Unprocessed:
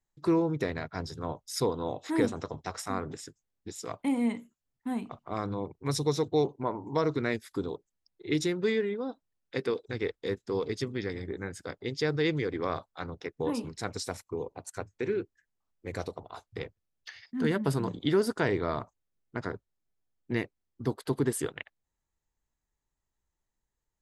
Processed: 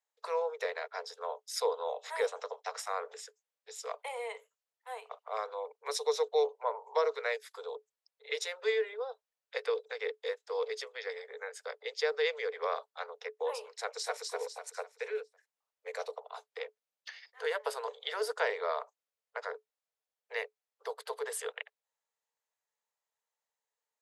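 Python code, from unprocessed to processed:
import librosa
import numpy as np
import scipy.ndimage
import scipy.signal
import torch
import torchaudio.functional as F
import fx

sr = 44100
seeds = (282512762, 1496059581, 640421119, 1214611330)

y = fx.echo_throw(x, sr, start_s=13.78, length_s=0.48, ms=250, feedback_pct=40, wet_db=-2.0)
y = scipy.signal.sosfilt(scipy.signal.cheby1(10, 1.0, 430.0, 'highpass', fs=sr, output='sos'), y)
y = fx.high_shelf(y, sr, hz=9700.0, db=-5.0)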